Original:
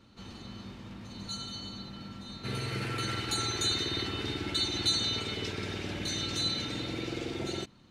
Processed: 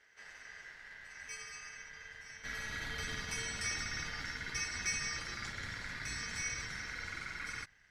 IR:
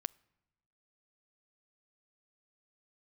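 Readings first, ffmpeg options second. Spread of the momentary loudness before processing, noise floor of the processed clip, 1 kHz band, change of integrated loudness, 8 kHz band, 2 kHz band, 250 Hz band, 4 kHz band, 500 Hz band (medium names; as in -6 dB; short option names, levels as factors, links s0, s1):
16 LU, -64 dBFS, -7.0 dB, -7.5 dB, -2.0 dB, +2.5 dB, -16.5 dB, -13.0 dB, -15.5 dB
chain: -filter_complex "[0:a]acrossover=split=7300[s0][s1];[s1]acompressor=threshold=0.00282:ratio=4:attack=1:release=60[s2];[s0][s2]amix=inputs=2:normalize=0,aeval=exprs='val(0)*sin(2*PI*1800*n/s)':c=same,asubboost=boost=7:cutoff=160,volume=0.596"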